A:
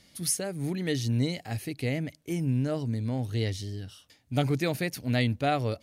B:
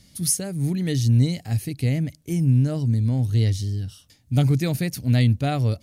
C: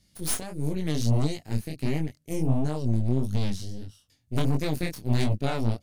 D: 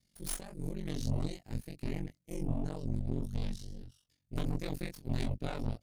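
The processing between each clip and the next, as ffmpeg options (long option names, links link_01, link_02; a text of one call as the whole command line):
ffmpeg -i in.wav -af "bass=frequency=250:gain=13,treble=frequency=4000:gain=8,volume=-1.5dB" out.wav
ffmpeg -i in.wav -af "aeval=exprs='0.473*(cos(1*acos(clip(val(0)/0.473,-1,1)))-cos(1*PI/2))+0.0841*(cos(3*acos(clip(val(0)/0.473,-1,1)))-cos(3*PI/2))+0.00376*(cos(7*acos(clip(val(0)/0.473,-1,1)))-cos(7*PI/2))+0.0531*(cos(8*acos(clip(val(0)/0.473,-1,1)))-cos(8*PI/2))':channel_layout=same,flanger=delay=19.5:depth=7.2:speed=1.5" out.wav
ffmpeg -i in.wav -af "aeval=exprs='val(0)*sin(2*PI*23*n/s)':channel_layout=same,volume=-7.5dB" out.wav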